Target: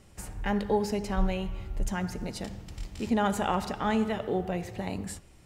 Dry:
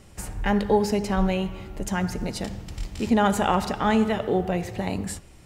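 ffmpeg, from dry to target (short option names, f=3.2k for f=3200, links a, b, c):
-filter_complex "[0:a]asettb=1/sr,asplit=3[a][b][c];[a]atrim=end=0.834[d];[b]atrim=start=0.83:end=1.92,asetpts=PTS-STARTPTS,afade=t=in:d=0.004:c=qsin,afade=t=out:st=1.086:d=0.004:c=qsin,asubboost=boost=10.5:cutoff=110[e];[c]atrim=start=1.916[f];[d][e]acrossfade=d=0.004:c1=hsin:c2=qsin[g];[g][f]acrossfade=d=0.004:c1=qsin:c2=hsin,volume=-6dB"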